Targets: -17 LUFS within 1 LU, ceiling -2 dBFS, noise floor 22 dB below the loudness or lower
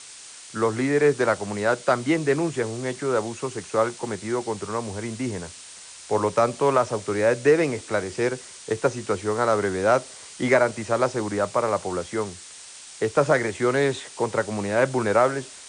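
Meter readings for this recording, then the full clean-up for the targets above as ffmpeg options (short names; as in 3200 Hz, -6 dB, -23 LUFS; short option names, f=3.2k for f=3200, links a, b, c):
noise floor -43 dBFS; noise floor target -46 dBFS; loudness -24.0 LUFS; peak -7.0 dBFS; loudness target -17.0 LUFS
-> -af "afftdn=nr=6:nf=-43"
-af "volume=7dB,alimiter=limit=-2dB:level=0:latency=1"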